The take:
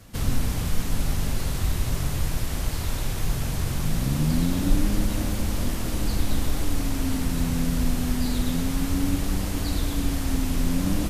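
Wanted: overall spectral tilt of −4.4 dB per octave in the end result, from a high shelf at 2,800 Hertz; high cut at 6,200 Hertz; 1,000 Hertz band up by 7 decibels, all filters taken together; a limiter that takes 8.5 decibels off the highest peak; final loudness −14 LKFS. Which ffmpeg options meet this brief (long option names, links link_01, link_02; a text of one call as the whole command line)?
ffmpeg -i in.wav -af "lowpass=6200,equalizer=frequency=1000:width_type=o:gain=7.5,highshelf=frequency=2800:gain=9,volume=14dB,alimiter=limit=-2dB:level=0:latency=1" out.wav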